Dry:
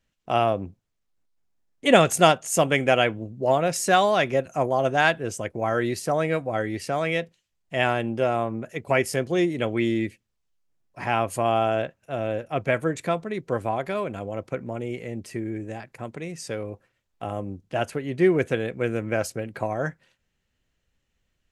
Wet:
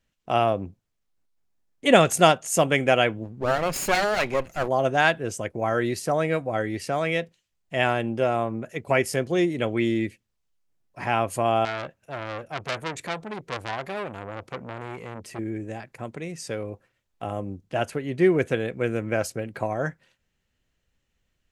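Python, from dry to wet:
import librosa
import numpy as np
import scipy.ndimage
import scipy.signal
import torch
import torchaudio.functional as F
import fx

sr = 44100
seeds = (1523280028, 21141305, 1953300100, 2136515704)

y = fx.lower_of_two(x, sr, delay_ms=0.42, at=(3.23, 4.67), fade=0.02)
y = fx.transformer_sat(y, sr, knee_hz=4000.0, at=(11.65, 15.39))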